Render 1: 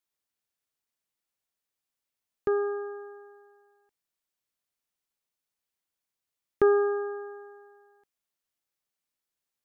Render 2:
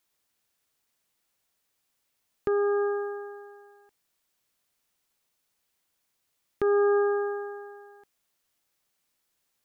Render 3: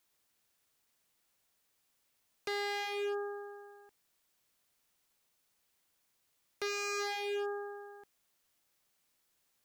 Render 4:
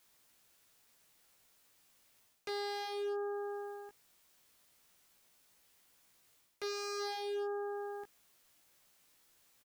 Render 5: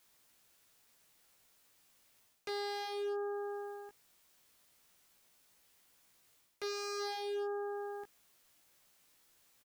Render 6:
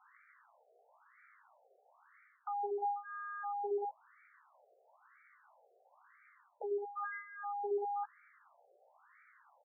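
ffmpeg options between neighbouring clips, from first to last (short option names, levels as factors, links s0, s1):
-filter_complex "[0:a]asplit=2[s0][s1];[s1]acompressor=threshold=0.02:ratio=6,volume=1.41[s2];[s0][s2]amix=inputs=2:normalize=0,alimiter=limit=0.1:level=0:latency=1:release=359,volume=1.41"
-af "aeval=exprs='0.0266*(abs(mod(val(0)/0.0266+3,4)-2)-1)':c=same"
-filter_complex "[0:a]areverse,acompressor=threshold=0.00398:ratio=4,areverse,asplit=2[s0][s1];[s1]adelay=17,volume=0.562[s2];[s0][s2]amix=inputs=2:normalize=0,volume=2.11"
-af anull
-af "lowpass=3100,alimiter=level_in=9.44:limit=0.0631:level=0:latency=1:release=51,volume=0.106,afftfilt=real='re*between(b*sr/1024,540*pow(1700/540,0.5+0.5*sin(2*PI*1*pts/sr))/1.41,540*pow(1700/540,0.5+0.5*sin(2*PI*1*pts/sr))*1.41)':imag='im*between(b*sr/1024,540*pow(1700/540,0.5+0.5*sin(2*PI*1*pts/sr))/1.41,540*pow(1700/540,0.5+0.5*sin(2*PI*1*pts/sr))*1.41)':win_size=1024:overlap=0.75,volume=7.5"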